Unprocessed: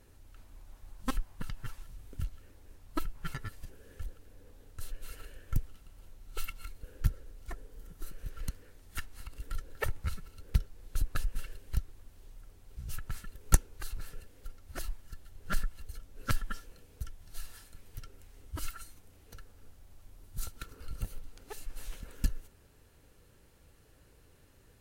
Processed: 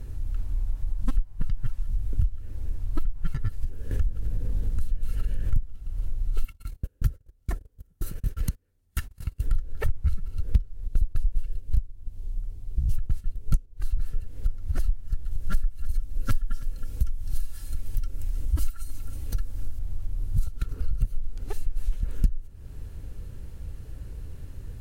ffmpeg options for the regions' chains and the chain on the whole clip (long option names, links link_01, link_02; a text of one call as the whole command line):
ffmpeg -i in.wav -filter_complex "[0:a]asettb=1/sr,asplit=3[link_01][link_02][link_03];[link_01]atrim=end=3.914[link_04];[link_02]atrim=start=3.91:end=5.64,asetpts=PTS-STARTPTS,afade=type=in:duration=0.004:curve=qsin,afade=type=out:start_time=1.726:duration=0.004:curve=qsin,acompressor=mode=upward:threshold=-36dB:ratio=2.5:attack=3.2:release=140:knee=2.83:detection=peak,aeval=exprs='val(0)+0.00282*(sin(2*PI*50*n/s)+sin(2*PI*2*50*n/s)/2+sin(2*PI*3*50*n/s)/3+sin(2*PI*4*50*n/s)/4+sin(2*PI*5*50*n/s)/5)':channel_layout=same[link_05];[link_03]atrim=start=5.636[link_06];[link_04][link_05]acrossfade=duration=0.004:curve1=hsin:curve2=qsin[link_07];[link_07][link_06]acrossfade=duration=0.004:curve1=qsin:curve2=hsin,asettb=1/sr,asplit=3[link_08][link_09][link_10];[link_08]atrim=end=6.444[link_11];[link_09]atrim=start=6.44:end=9.44,asetpts=PTS-STARTPTS,afade=type=in:duration=0.004:curve=qsin,afade=type=out:start_time=2.996:duration=0.004:curve=qsin,agate=range=-29dB:threshold=-42dB:ratio=16:release=100:detection=peak,highpass=frequency=130:poles=1,highshelf=frequency=7800:gain=6.5[link_12];[link_10]atrim=start=9.436[link_13];[link_11][link_12]acrossfade=duration=0.004:curve1=hsin:curve2=qsin[link_14];[link_14][link_13]acrossfade=duration=0.004:curve1=qsin:curve2=hsin,asettb=1/sr,asplit=3[link_15][link_16][link_17];[link_15]atrim=end=10.874[link_18];[link_16]atrim=start=10.87:end=13.77,asetpts=PTS-STARTPTS,afade=type=in:duration=0.004:curve=qsin,afade=type=out:start_time=2.896:duration=0.004:curve=qsin,agate=range=-7dB:threshold=-45dB:ratio=16:release=100:detection=peak,equalizer=frequency=1500:width=1.1:gain=-6[link_19];[link_17]atrim=start=13.766[link_20];[link_18][link_19]acrossfade=duration=0.004:curve1=hsin:curve2=qsin[link_21];[link_21][link_20]acrossfade=duration=0.004:curve1=qsin:curve2=hsin,asettb=1/sr,asplit=3[link_22][link_23][link_24];[link_22]atrim=end=15.314[link_25];[link_23]atrim=start=15.31:end=19.79,asetpts=PTS-STARTPTS,afade=type=in:duration=0.004:curve=qsin,afade=type=out:start_time=4.476:duration=0.004:curve=qsin,highshelf=frequency=4300:gain=8.5,aecho=1:1:3.6:0.35,atrim=end_sample=197568,aecho=1:1:319:0.106,atrim=end_sample=197568[link_26];[link_24]atrim=start=19.786[link_27];[link_25][link_26]acrossfade=duration=0.004:curve1=hsin:curve2=qsin[link_28];[link_28][link_27]acrossfade=duration=0.004:curve1=qsin:curve2=hsin,lowshelf=frequency=130:gain=11,acompressor=threshold=-38dB:ratio=4,lowshelf=frequency=280:gain=10.5,volume=6.5dB" out.wav